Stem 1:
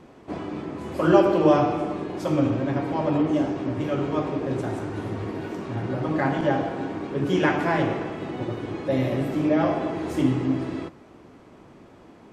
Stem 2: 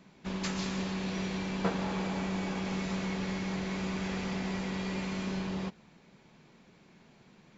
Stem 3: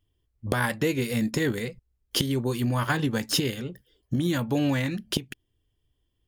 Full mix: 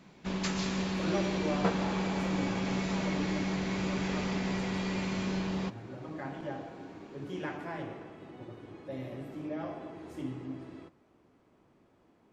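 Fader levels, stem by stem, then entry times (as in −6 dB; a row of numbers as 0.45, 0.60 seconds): −16.5 dB, +1.5 dB, muted; 0.00 s, 0.00 s, muted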